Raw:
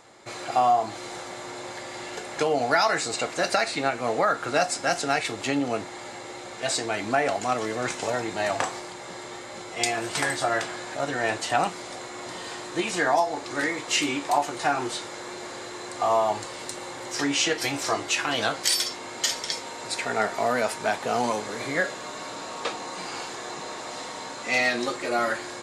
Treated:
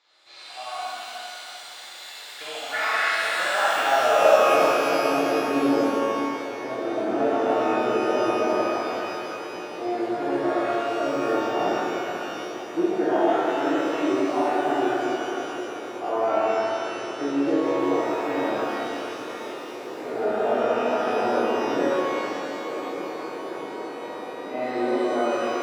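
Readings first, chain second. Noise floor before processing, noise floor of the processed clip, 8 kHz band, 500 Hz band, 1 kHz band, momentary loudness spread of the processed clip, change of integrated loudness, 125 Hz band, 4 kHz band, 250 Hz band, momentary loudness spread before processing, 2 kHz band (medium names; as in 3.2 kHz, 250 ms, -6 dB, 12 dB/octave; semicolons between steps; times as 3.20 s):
-39 dBFS, -40 dBFS, -10.5 dB, +5.5 dB, +1.5 dB, 13 LU, +2.5 dB, -4.5 dB, -4.5 dB, +6.5 dB, 13 LU, -1.0 dB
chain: band-pass sweep 4.1 kHz -> 370 Hz, 2.27–4.65 s; tape spacing loss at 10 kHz 23 dB; thinning echo 65 ms, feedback 73%, high-pass 780 Hz, level -3 dB; pitch-shifted reverb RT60 3 s, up +12 st, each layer -8 dB, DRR -9.5 dB; trim +2 dB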